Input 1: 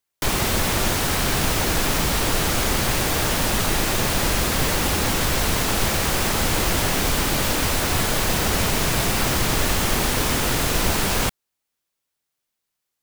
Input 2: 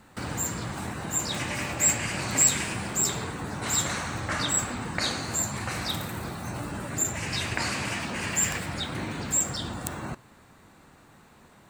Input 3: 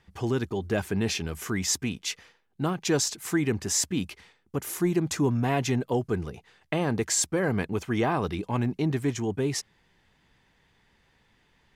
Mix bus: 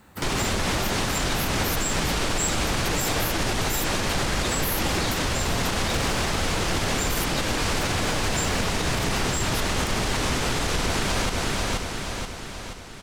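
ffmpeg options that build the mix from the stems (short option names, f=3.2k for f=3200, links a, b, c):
-filter_complex "[0:a]lowpass=7.6k,volume=2.5dB,asplit=2[a][b];[b]volume=-7.5dB[c];[1:a]volume=0.5dB[d];[2:a]aexciter=amount=11.9:drive=9.3:freq=11k,volume=-5.5dB[e];[c]aecho=0:1:479|958|1437|1916|2395|2874|3353|3832:1|0.55|0.303|0.166|0.0915|0.0503|0.0277|0.0152[f];[a][d][e][f]amix=inputs=4:normalize=0,alimiter=limit=-15dB:level=0:latency=1:release=127"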